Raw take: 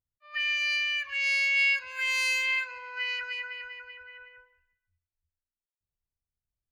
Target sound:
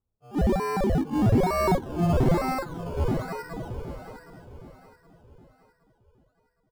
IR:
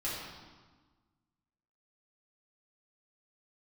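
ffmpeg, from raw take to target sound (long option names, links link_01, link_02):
-af "acrusher=samples=18:mix=1:aa=0.000001:lfo=1:lforange=10.8:lforate=1.1,tiltshelf=frequency=900:gain=9.5,aecho=1:1:767|1534|2301|3068:0.2|0.0818|0.0335|0.0138"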